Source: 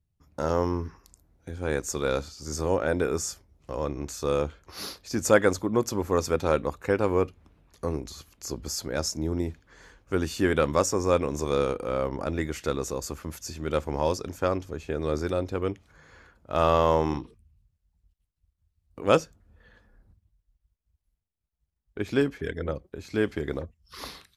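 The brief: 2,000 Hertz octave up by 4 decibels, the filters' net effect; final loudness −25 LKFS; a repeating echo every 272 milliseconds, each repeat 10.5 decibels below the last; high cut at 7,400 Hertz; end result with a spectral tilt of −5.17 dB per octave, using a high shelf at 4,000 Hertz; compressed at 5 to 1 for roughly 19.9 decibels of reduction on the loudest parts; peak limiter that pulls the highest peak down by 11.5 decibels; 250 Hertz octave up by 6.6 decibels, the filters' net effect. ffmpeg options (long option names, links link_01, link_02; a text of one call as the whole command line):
ffmpeg -i in.wav -af "lowpass=7400,equalizer=frequency=250:width_type=o:gain=8.5,equalizer=frequency=2000:width_type=o:gain=7,highshelf=frequency=4000:gain=-7.5,acompressor=threshold=-35dB:ratio=5,alimiter=level_in=6dB:limit=-24dB:level=0:latency=1,volume=-6dB,aecho=1:1:272|544|816:0.299|0.0896|0.0269,volume=18dB" out.wav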